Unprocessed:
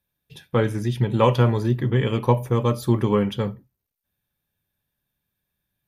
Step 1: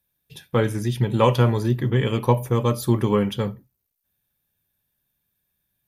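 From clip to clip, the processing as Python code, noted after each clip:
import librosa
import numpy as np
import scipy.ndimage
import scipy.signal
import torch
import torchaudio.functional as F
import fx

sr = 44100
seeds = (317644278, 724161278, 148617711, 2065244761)

y = fx.high_shelf(x, sr, hz=6300.0, db=8.0)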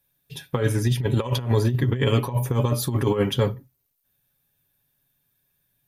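y = x + 0.54 * np.pad(x, (int(7.3 * sr / 1000.0), 0))[:len(x)]
y = fx.over_compress(y, sr, threshold_db=-20.0, ratio=-0.5)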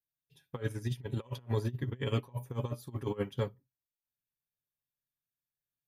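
y = fx.upward_expand(x, sr, threshold_db=-28.0, expansion=2.5)
y = y * 10.0 ** (-9.0 / 20.0)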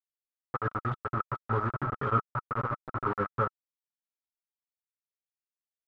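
y = fx.quant_dither(x, sr, seeds[0], bits=6, dither='none')
y = fx.lowpass_res(y, sr, hz=1300.0, q=13.0)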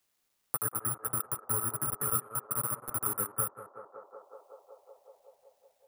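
y = (np.kron(x[::4], np.eye(4)[0]) * 4)[:len(x)]
y = fx.echo_banded(y, sr, ms=186, feedback_pct=74, hz=640.0, wet_db=-9.5)
y = fx.band_squash(y, sr, depth_pct=70)
y = y * 10.0 ** (-8.0 / 20.0)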